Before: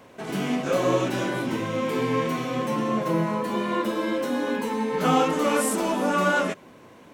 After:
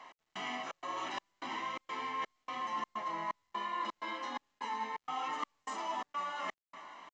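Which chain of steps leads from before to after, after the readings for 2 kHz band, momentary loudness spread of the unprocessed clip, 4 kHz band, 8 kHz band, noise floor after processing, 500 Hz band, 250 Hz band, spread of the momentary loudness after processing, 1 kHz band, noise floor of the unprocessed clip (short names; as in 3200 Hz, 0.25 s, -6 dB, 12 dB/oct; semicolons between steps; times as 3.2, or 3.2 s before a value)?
-13.0 dB, 6 LU, -10.0 dB, -20.0 dB, -85 dBFS, -24.0 dB, -25.5 dB, 5 LU, -9.0 dB, -49 dBFS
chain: in parallel at -3.5 dB: soft clip -22.5 dBFS, distortion -12 dB; on the sum: feedback echo 0.275 s, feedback 36%, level -20.5 dB; step gate "x..xxx.xx" 127 bpm -60 dB; HPF 720 Hz 12 dB/oct; high shelf 5500 Hz -11.5 dB; reverse; compressor 6:1, threshold -33 dBFS, peak gain reduction 14 dB; reverse; comb 1 ms, depth 72%; gain -4.5 dB; µ-law 128 kbps 16000 Hz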